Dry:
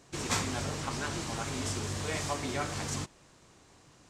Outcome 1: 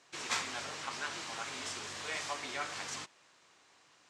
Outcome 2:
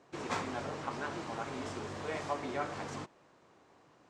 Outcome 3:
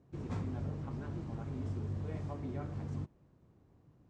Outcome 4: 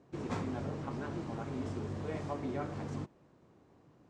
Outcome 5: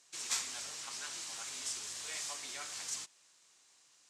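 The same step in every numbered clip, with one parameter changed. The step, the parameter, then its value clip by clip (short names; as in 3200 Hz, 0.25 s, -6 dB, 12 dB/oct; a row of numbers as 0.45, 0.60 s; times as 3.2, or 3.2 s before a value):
band-pass, frequency: 2400, 690, 100, 260, 7800 Hz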